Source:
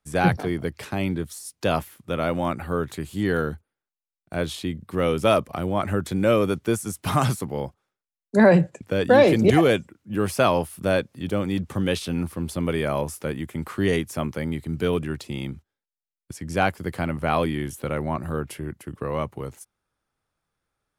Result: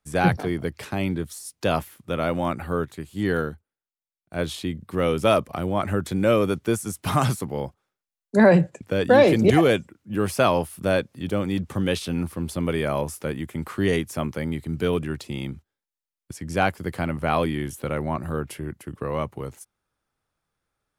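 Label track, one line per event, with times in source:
2.850000	4.390000	upward expander, over -36 dBFS

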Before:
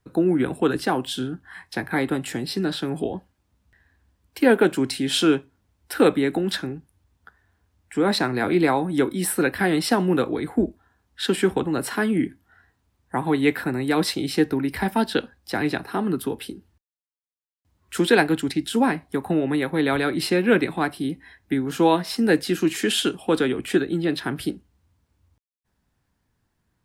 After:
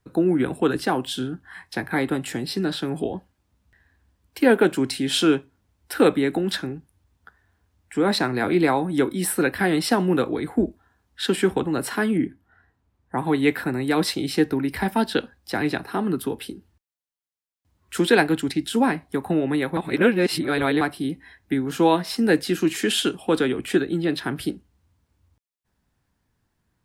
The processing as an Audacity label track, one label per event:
12.170000	13.180000	high shelf 2500 Hz -10.5 dB
19.770000	20.810000	reverse

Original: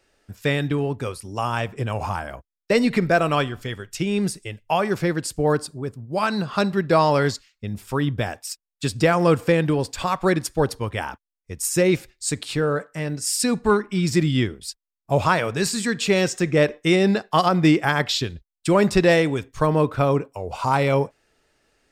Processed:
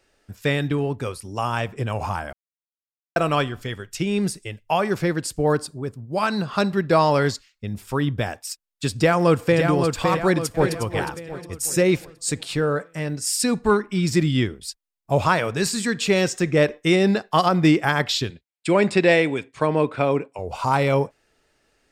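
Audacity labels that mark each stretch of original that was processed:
2.330000	3.160000	mute
8.940000	9.630000	echo throw 0.56 s, feedback 45%, level -5 dB
10.180000	10.730000	echo throw 0.36 s, feedback 45%, level -8.5 dB
18.300000	20.390000	speaker cabinet 180–9000 Hz, peaks and dips at 1200 Hz -4 dB, 2300 Hz +6 dB, 6000 Hz -10 dB

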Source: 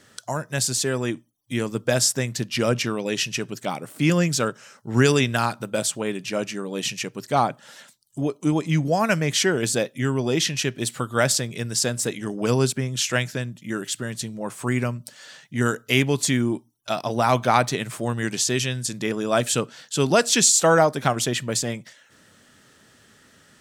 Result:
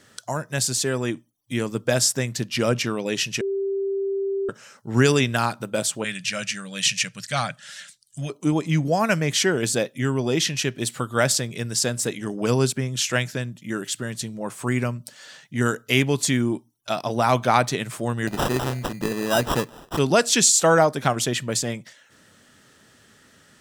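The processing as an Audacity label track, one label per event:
3.410000	4.490000	bleep 392 Hz -22 dBFS
6.040000	8.300000	EQ curve 180 Hz 0 dB, 370 Hz -21 dB, 580 Hz -5 dB, 920 Hz -11 dB, 1600 Hz +6 dB, 9600 Hz +7 dB, 14000 Hz -8 dB
18.270000	19.990000	sample-rate reducer 2200 Hz

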